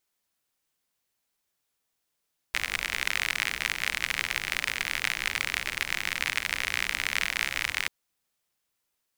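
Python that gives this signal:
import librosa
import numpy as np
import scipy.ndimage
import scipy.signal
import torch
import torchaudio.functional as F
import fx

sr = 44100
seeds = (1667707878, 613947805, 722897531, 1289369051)

y = fx.rain(sr, seeds[0], length_s=5.34, drops_per_s=60.0, hz=2100.0, bed_db=-14)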